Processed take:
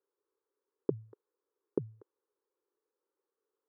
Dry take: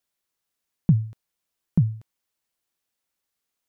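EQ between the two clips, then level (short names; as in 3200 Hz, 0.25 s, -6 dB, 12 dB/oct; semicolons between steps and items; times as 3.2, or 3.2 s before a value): ladder band-pass 470 Hz, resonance 60%; fixed phaser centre 680 Hz, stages 6; +17.0 dB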